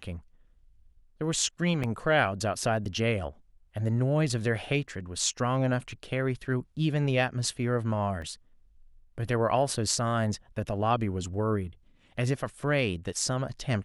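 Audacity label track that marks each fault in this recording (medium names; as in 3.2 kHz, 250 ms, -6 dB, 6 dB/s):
1.830000	1.840000	dropout 6.4 ms
2.850000	2.860000	dropout 6.1 ms
8.220000	8.220000	dropout 2.4 ms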